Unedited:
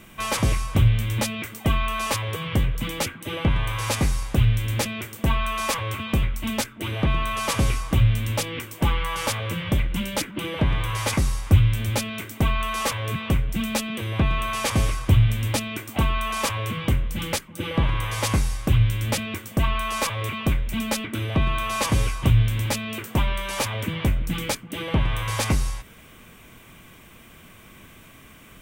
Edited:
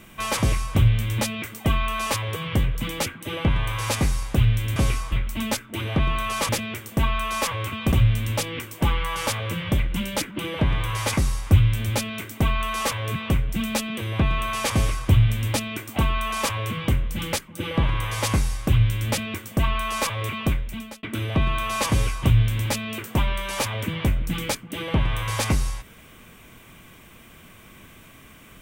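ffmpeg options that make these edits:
ffmpeg -i in.wav -filter_complex "[0:a]asplit=6[link_01][link_02][link_03][link_04][link_05][link_06];[link_01]atrim=end=4.762[link_07];[link_02]atrim=start=7.558:end=7.922[link_08];[link_03]atrim=start=6.188:end=7.562[link_09];[link_04]atrim=start=4.758:end=6.192[link_10];[link_05]atrim=start=7.918:end=21.03,asetpts=PTS-STARTPTS,afade=type=out:start_time=12.542:duration=0.57[link_11];[link_06]atrim=start=21.03,asetpts=PTS-STARTPTS,afade=type=in:duration=0.004:curve=hsin[link_12];[link_07][link_08]acrossfade=duration=0.004:curve1=hsin:curve2=hsin[link_13];[link_13][link_09]acrossfade=duration=0.004:curve1=hsin:curve2=hsin[link_14];[link_14][link_10]acrossfade=duration=0.004:curve1=hsin:curve2=hsin[link_15];[link_11][link_12]concat=n=2:v=0:a=1[link_16];[link_15][link_16]acrossfade=duration=0.004:curve1=hsin:curve2=hsin" out.wav

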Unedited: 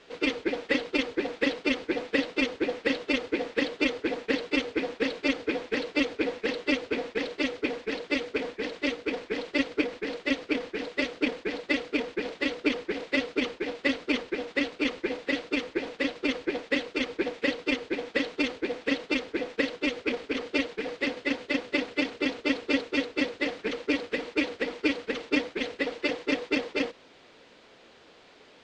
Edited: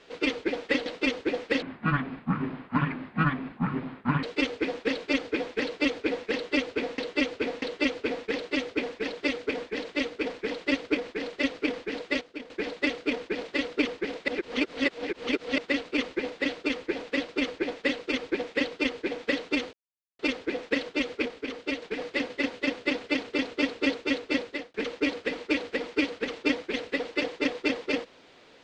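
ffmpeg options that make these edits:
ffmpeg -i in.wav -filter_complex "[0:a]asplit=15[link_01][link_02][link_03][link_04][link_05][link_06][link_07][link_08][link_09][link_10][link_11][link_12][link_13][link_14][link_15];[link_01]atrim=end=0.862[link_16];[link_02]atrim=start=2.208:end=2.974[link_17];[link_03]atrim=start=2.97:end=4.38,asetpts=PTS-STARTPTS,asetrate=23814,aresample=44100[link_18];[link_04]atrim=start=4.376:end=7.132[link_19];[link_05]atrim=start=6.488:end=7.132[link_20];[link_06]atrim=start=6.488:end=11.082[link_21];[link_07]atrim=start=11.078:end=11.372,asetpts=PTS-STARTPTS,volume=-12dB[link_22];[link_08]atrim=start=11.368:end=13.152[link_23];[link_09]atrim=start=13.148:end=14.452,asetpts=PTS-STARTPTS,areverse[link_24];[link_10]atrim=start=14.448:end=18.6,asetpts=PTS-STARTPTS,afade=type=out:start_time=4.148:duration=0.004:curve=hsin[link_25];[link_11]atrim=start=18.6:end=19.06,asetpts=PTS-STARTPTS,volume=0[link_26];[link_12]atrim=start=19.06:end=20.132,asetpts=PTS-STARTPTS,afade=type=in:duration=0.004:curve=hsin[link_27];[link_13]atrim=start=20.128:end=20.692,asetpts=PTS-STARTPTS,volume=-4dB[link_28];[link_14]atrim=start=20.688:end=23.61,asetpts=PTS-STARTPTS,afade=type=out:start_time=2.592:duration=0.33[link_29];[link_15]atrim=start=23.61,asetpts=PTS-STARTPTS,afade=type=in:duration=0.004:curve=hsin[link_30];[link_16][link_17]acrossfade=duration=0.004:curve1=hsin:curve2=hsin[link_31];[link_31][link_18]acrossfade=duration=0.004:curve1=hsin:curve2=hsin[link_32];[link_32][link_19]acrossfade=duration=0.004:curve1=hsin:curve2=hsin[link_33];[link_33][link_20]acrossfade=duration=0.004:curve1=hsin:curve2=hsin[link_34];[link_34][link_21]acrossfade=duration=0.004:curve1=hsin:curve2=hsin[link_35];[link_35][link_22]acrossfade=duration=0.004:curve1=hsin:curve2=hsin[link_36];[link_36][link_23]acrossfade=duration=0.004:curve1=hsin:curve2=hsin[link_37];[link_37][link_24]acrossfade=duration=0.004:curve1=hsin:curve2=hsin[link_38];[link_25][link_26][link_27]concat=n=3:v=0:a=1[link_39];[link_38][link_39]acrossfade=duration=0.004:curve1=hsin:curve2=hsin[link_40];[link_40][link_28]acrossfade=duration=0.004:curve1=hsin:curve2=hsin[link_41];[link_29][link_30]concat=n=2:v=0:a=1[link_42];[link_41][link_42]acrossfade=duration=0.004:curve1=hsin:curve2=hsin" out.wav

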